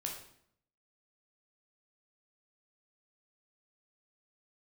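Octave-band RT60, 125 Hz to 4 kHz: 0.85, 0.85, 0.70, 0.65, 0.60, 0.55 seconds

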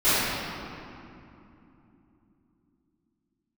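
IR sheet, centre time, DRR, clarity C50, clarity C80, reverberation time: 185 ms, −20.0 dB, −6.0 dB, −3.0 dB, 2.9 s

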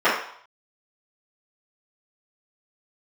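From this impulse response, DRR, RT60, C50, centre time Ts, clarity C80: −15.0 dB, 0.60 s, 3.0 dB, 43 ms, 7.5 dB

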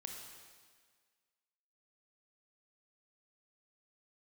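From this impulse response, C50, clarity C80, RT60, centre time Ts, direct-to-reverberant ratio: 3.0 dB, 4.5 dB, 1.7 s, 63 ms, 1.5 dB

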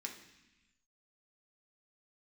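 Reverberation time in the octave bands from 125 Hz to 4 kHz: 1.3, 1.3, 0.85, 1.0, 1.4, 1.3 seconds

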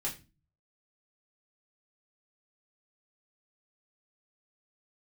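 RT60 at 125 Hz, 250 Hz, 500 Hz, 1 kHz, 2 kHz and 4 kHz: 0.70, 0.50, 0.30, 0.25, 0.30, 0.25 seconds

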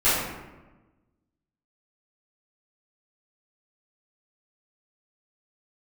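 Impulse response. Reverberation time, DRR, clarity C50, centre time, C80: 1.2 s, −15.5 dB, −0.5 dB, 80 ms, 2.5 dB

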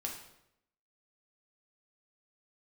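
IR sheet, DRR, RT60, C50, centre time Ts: −1.0 dB, 0.80 s, 5.5 dB, 31 ms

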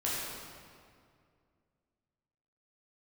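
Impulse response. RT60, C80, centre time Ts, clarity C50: 2.2 s, −0.5 dB, 132 ms, −2.5 dB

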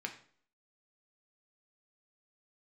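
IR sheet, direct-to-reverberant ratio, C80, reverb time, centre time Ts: 3.0 dB, 14.5 dB, 0.50 s, 11 ms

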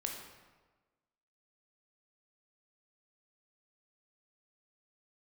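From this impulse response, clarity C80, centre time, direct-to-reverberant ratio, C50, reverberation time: 5.5 dB, 47 ms, 1.0 dB, 3.5 dB, 1.3 s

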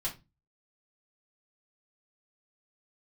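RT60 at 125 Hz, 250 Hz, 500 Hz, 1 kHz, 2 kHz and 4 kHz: 0.45, 0.40, 0.25, 0.20, 0.20, 0.20 seconds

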